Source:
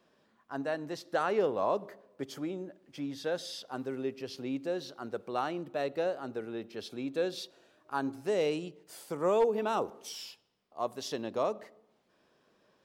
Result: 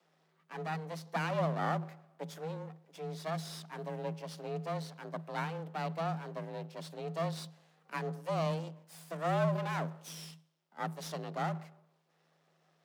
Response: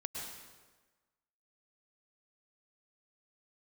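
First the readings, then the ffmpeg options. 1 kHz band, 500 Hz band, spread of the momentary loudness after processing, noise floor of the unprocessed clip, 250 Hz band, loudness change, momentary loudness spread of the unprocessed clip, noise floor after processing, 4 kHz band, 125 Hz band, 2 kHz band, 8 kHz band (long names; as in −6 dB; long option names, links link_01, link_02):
−1.0 dB, −6.5 dB, 14 LU, −71 dBFS, −3.5 dB, −3.5 dB, 14 LU, −73 dBFS, −4.5 dB, +10.5 dB, −0.5 dB, −3.0 dB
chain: -af "aeval=exprs='max(val(0),0)':channel_layout=same,equalizer=frequency=150:width=2.2:gain=-4,afreqshift=160"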